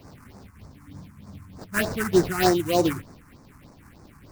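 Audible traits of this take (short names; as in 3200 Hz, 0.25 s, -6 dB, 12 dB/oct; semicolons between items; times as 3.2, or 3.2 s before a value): aliases and images of a low sample rate 3400 Hz, jitter 20%; phasing stages 4, 3.3 Hz, lowest notch 530–3000 Hz; noise-modulated level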